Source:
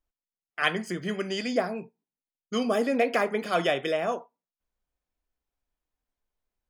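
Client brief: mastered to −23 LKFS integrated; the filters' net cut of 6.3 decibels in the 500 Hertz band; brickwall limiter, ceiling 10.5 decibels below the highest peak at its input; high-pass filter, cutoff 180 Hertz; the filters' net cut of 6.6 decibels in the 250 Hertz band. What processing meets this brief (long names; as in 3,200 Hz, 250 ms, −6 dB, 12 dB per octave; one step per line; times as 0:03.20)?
high-pass filter 180 Hz
parametric band 250 Hz −4.5 dB
parametric band 500 Hz −7 dB
level +10.5 dB
brickwall limiter −10 dBFS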